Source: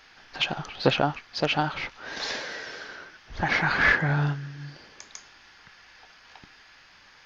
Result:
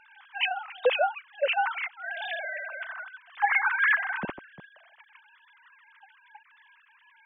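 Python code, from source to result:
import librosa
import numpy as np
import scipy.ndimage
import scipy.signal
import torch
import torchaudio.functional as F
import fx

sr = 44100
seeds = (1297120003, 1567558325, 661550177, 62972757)

p1 = fx.sine_speech(x, sr)
p2 = fx.rider(p1, sr, range_db=5, speed_s=0.5)
p3 = p1 + F.gain(torch.from_numpy(p2), 0.0).numpy()
y = F.gain(torch.from_numpy(p3), -7.5).numpy()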